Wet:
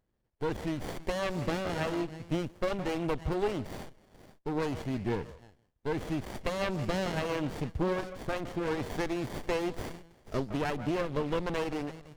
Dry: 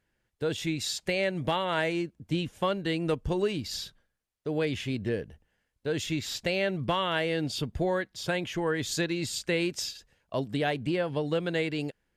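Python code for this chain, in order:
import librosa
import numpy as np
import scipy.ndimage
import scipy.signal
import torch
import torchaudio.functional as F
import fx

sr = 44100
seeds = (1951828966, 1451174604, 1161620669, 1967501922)

y = fx.echo_stepped(x, sr, ms=163, hz=860.0, octaves=1.4, feedback_pct=70, wet_db=-6.5)
y = fx.running_max(y, sr, window=33)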